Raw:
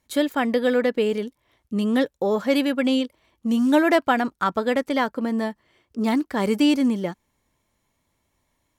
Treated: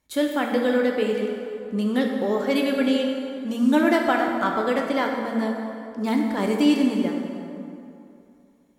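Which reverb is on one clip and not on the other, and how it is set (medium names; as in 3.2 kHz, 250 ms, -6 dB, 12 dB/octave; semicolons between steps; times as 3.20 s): plate-style reverb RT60 2.7 s, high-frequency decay 0.6×, DRR 1 dB; trim -3 dB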